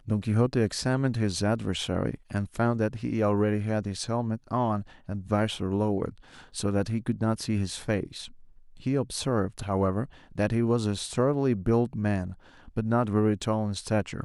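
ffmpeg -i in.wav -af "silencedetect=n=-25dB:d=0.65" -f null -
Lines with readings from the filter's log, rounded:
silence_start: 8.04
silence_end: 8.86 | silence_duration: 0.83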